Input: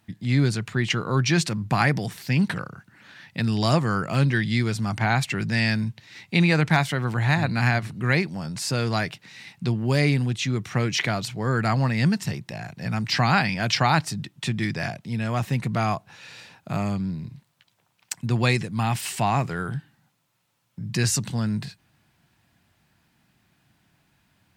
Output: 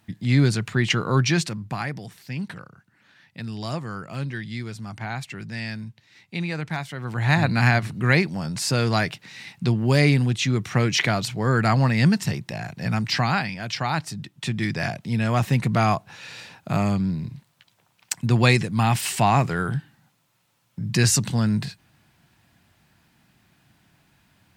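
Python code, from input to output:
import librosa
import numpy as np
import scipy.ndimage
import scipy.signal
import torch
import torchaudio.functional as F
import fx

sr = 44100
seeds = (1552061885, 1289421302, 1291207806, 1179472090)

y = fx.gain(x, sr, db=fx.line((1.18, 2.5), (1.86, -9.0), (6.92, -9.0), (7.36, 3.0), (12.93, 3.0), (13.64, -7.0), (15.06, 4.0)))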